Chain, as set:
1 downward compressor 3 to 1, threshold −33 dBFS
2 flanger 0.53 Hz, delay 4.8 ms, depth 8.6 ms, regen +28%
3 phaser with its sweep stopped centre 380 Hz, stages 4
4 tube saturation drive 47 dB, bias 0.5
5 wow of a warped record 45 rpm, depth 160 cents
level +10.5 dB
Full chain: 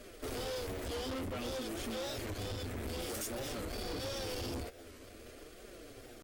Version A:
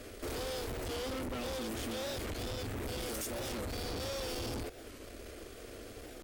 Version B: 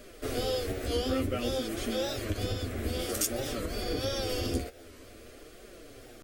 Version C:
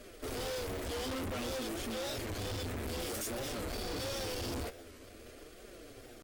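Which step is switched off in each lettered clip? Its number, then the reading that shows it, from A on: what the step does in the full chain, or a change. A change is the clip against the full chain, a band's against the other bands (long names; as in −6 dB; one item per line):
2, change in momentary loudness spread −3 LU
4, change in crest factor +13.5 dB
1, average gain reduction 4.0 dB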